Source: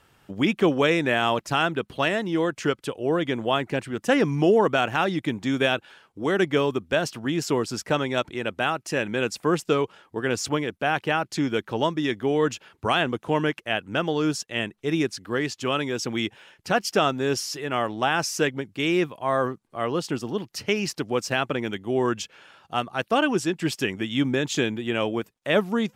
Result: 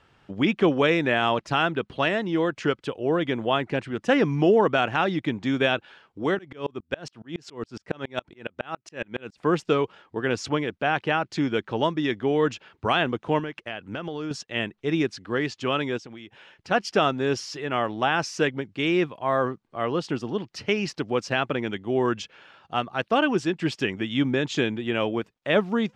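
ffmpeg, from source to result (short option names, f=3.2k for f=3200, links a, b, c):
-filter_complex "[0:a]asplit=3[a][b][c];[a]afade=t=out:st=6.34:d=0.02[d];[b]aeval=exprs='val(0)*pow(10,-33*if(lt(mod(-7.2*n/s,1),2*abs(-7.2)/1000),1-mod(-7.2*n/s,1)/(2*abs(-7.2)/1000),(mod(-7.2*n/s,1)-2*abs(-7.2)/1000)/(1-2*abs(-7.2)/1000))/20)':c=same,afade=t=in:st=6.34:d=0.02,afade=t=out:st=9.37:d=0.02[e];[c]afade=t=in:st=9.37:d=0.02[f];[d][e][f]amix=inputs=3:normalize=0,asettb=1/sr,asplit=3[g][h][i];[g]atrim=end=13.394[j];[h]atrim=start=13.39:end=14.31,asetpts=PTS-STARTPTS,afade=t=in:d=0.004:c=qsin,afade=t=out:st=0.916:d=0.004:c=qsin,acompressor=threshold=-28dB:ratio=6:attack=3.2:release=140:knee=1:detection=peak[k];[i]atrim=start=14.306[l];[j][k]acrossfade=d=0.004:c1=hsin:c2=qsin[m];[m][l]acrossfade=d=0.004:c1=qsin:c2=hsin,asplit=3[n][o][p];[n]afade=t=out:st=15.97:d=0.02[q];[o]acompressor=threshold=-37dB:ratio=16:attack=3.2:release=140:knee=1:detection=peak,afade=t=in:st=15.97:d=0.02,afade=t=out:st=16.7:d=0.02[r];[p]afade=t=in:st=16.7:d=0.02[s];[q][r][s]amix=inputs=3:normalize=0,lowpass=4.6k"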